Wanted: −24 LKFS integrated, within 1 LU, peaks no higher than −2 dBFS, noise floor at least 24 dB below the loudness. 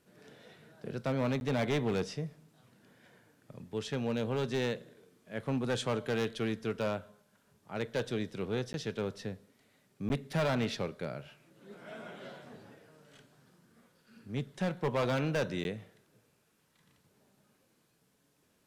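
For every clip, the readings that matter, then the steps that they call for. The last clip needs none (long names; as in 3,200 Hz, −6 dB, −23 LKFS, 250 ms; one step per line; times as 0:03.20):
share of clipped samples 1.6%; peaks flattened at −26.0 dBFS; number of dropouts 4; longest dropout 11 ms; integrated loudness −35.0 LKFS; sample peak −26.0 dBFS; target loudness −24.0 LKFS
→ clipped peaks rebuilt −26 dBFS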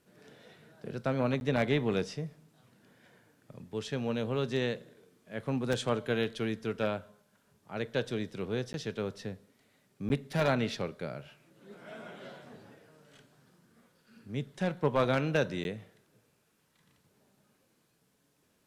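share of clipped samples 0.0%; number of dropouts 4; longest dropout 11 ms
→ repair the gap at 0:01.40/0:08.73/0:10.09/0:15.64, 11 ms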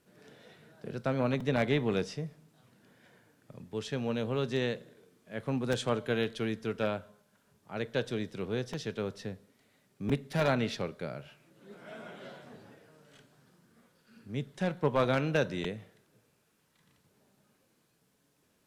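number of dropouts 0; integrated loudness −33.0 LKFS; sample peak −17.0 dBFS; target loudness −24.0 LKFS
→ level +9 dB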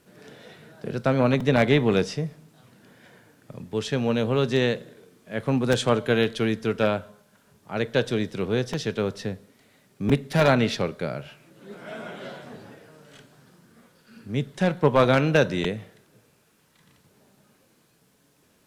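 integrated loudness −24.0 LKFS; sample peak −8.0 dBFS; background noise floor −63 dBFS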